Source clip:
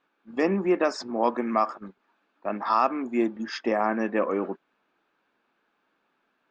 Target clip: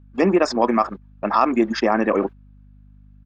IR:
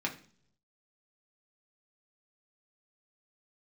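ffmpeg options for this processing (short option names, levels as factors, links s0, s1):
-filter_complex "[0:a]agate=range=0.158:threshold=0.00708:ratio=16:detection=peak,asplit=2[s0][s1];[s1]alimiter=limit=0.1:level=0:latency=1:release=65,volume=0.944[s2];[s0][s2]amix=inputs=2:normalize=0,aeval=exprs='val(0)+0.00316*(sin(2*PI*50*n/s)+sin(2*PI*2*50*n/s)/2+sin(2*PI*3*50*n/s)/3+sin(2*PI*4*50*n/s)/4+sin(2*PI*5*50*n/s)/5)':c=same,atempo=2,volume=1.5"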